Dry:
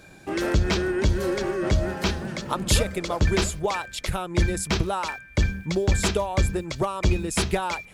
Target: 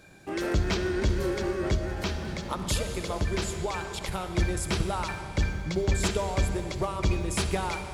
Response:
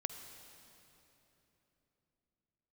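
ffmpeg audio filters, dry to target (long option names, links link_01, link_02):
-filter_complex "[1:a]atrim=start_sample=2205[link_01];[0:a][link_01]afir=irnorm=-1:irlink=0,asettb=1/sr,asplit=3[link_02][link_03][link_04];[link_02]atrim=end=1.754[link_05];[link_03]atrim=start=1.75:end=4.12,asetpts=PTS-STARTPTS,afade=type=in:duration=0.004:curve=qsin,afade=type=out:start_time=2.366:duration=0.004:curve=qsin,acompressor=threshold=-26dB:ratio=1.5[link_06];[link_04]atrim=start=4.116[link_07];[link_05][link_06]acrossfade=duration=0.004:curve1=hsin:curve2=qsin[link_08];[link_08][link_07]acrossfade=duration=0.004:curve1=qsin:curve2=hsin,volume=-3.5dB"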